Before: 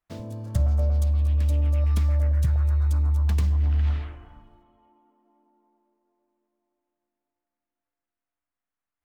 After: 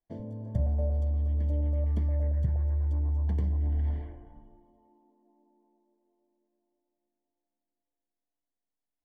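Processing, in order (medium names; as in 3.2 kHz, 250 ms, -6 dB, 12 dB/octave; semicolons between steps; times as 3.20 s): boxcar filter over 34 samples; peaking EQ 74 Hz -8.5 dB 2.2 oct; de-hum 82.47 Hz, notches 38; trim +2.5 dB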